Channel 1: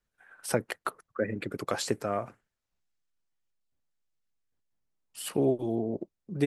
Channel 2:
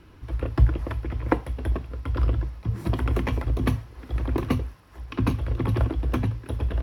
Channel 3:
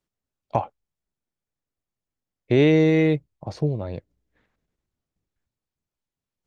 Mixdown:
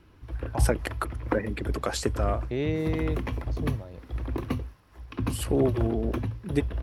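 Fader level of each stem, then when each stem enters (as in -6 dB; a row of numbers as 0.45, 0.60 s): +1.5, -5.5, -12.0 dB; 0.15, 0.00, 0.00 s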